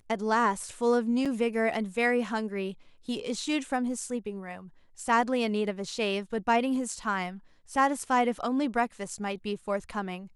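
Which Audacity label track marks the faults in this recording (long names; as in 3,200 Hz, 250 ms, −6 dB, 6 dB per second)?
1.250000	1.260000	drop-out 6.5 ms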